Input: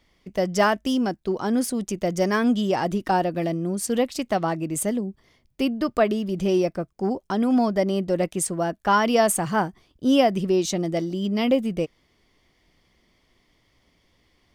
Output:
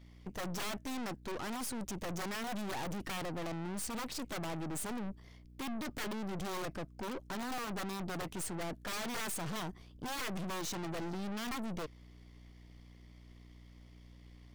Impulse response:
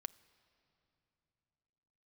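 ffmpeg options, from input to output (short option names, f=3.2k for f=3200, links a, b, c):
-af "aeval=exprs='val(0)+0.00251*(sin(2*PI*60*n/s)+sin(2*PI*2*60*n/s)/2+sin(2*PI*3*60*n/s)/3+sin(2*PI*4*60*n/s)/4+sin(2*PI*5*60*n/s)/5)':c=same,aeval=exprs='(mod(6.31*val(0)+1,2)-1)/6.31':c=same,aeval=exprs='(tanh(100*val(0)+0.7)-tanh(0.7))/100':c=same,volume=1.5dB"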